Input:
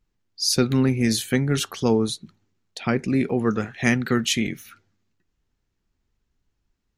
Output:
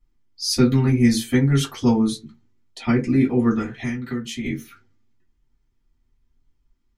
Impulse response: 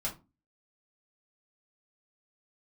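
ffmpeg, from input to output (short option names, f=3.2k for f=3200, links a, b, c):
-filter_complex "[0:a]asettb=1/sr,asplit=3[a][b][c];[a]atrim=end=3.794[d];[b]atrim=start=3.79:end=4.44,asetpts=PTS-STARTPTS,afade=t=in:d=0.004:c=qsin,afade=t=out:st=0.646:d=0.004:c=qsin,acompressor=threshold=-29dB:ratio=5[e];[c]atrim=start=4.436[f];[d][e]acrossfade=d=0.004:c1=hsin:c2=qsin[g];[g][f]acrossfade=d=0.004:c1=qsin:c2=hsin[h];[1:a]atrim=start_sample=2205,asetrate=66150,aresample=44100[i];[h][i]afir=irnorm=-1:irlink=0"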